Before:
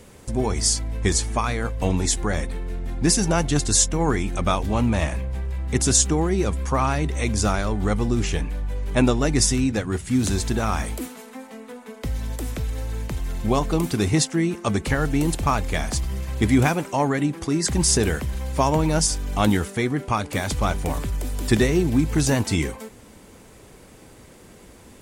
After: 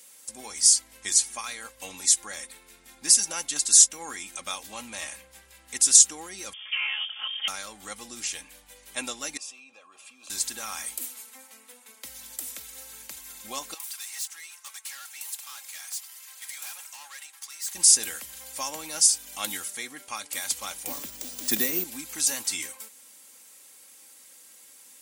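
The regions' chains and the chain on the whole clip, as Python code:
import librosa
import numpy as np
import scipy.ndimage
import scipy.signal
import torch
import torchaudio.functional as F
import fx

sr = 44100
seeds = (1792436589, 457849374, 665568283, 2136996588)

y = fx.chain(x, sr, fx.lower_of_two(delay_ms=4.7),
    fx.highpass(hz=250.0, slope=12),
    fx.freq_invert(carrier_hz=3400), at=(6.53, 7.48))
y = fx.chain(y, sr, fx.vowel_filter(vowel='a'),
    fx.notch_comb(f0_hz=730.0),
    fx.env_flatten(amount_pct=70), at=(9.37, 10.3))
y = fx.chain(y, sr, fx.highpass(hz=810.0, slope=24),
    fx.tube_stage(drive_db=33.0, bias=0.55), at=(13.74, 17.75))
y = fx.chain(y, sr, fx.peak_eq(hz=230.0, db=11.5, octaves=2.6),
    fx.resample_bad(factor=3, down='none', up='hold'), at=(20.87, 21.84))
y = np.diff(y, prepend=0.0)
y = y + 0.49 * np.pad(y, (int(3.7 * sr / 1000.0), 0))[:len(y)]
y = y * librosa.db_to_amplitude(3.0)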